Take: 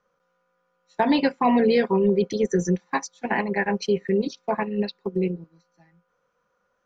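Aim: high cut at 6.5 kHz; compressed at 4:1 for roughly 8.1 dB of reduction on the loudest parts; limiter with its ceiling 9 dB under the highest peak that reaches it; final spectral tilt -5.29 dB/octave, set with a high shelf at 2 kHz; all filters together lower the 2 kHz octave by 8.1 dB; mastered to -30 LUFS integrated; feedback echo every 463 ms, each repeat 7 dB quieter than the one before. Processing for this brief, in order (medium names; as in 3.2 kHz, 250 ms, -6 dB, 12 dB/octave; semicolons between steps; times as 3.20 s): low-pass 6.5 kHz; treble shelf 2 kHz -7.5 dB; peaking EQ 2 kHz -5.5 dB; compression 4:1, threshold -26 dBFS; peak limiter -23.5 dBFS; feedback delay 463 ms, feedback 45%, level -7 dB; trim +3 dB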